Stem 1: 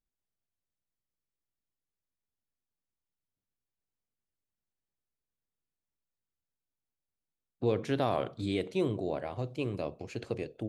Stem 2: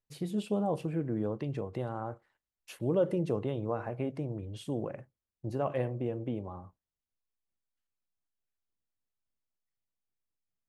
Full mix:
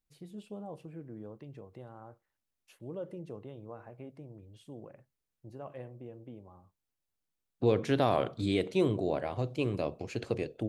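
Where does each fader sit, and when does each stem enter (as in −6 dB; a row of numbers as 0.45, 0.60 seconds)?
+2.5, −12.5 decibels; 0.00, 0.00 seconds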